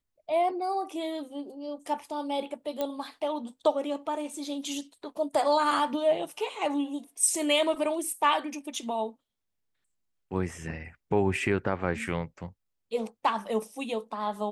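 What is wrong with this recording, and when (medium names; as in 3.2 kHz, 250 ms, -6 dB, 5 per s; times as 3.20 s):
2.81 s: pop -17 dBFS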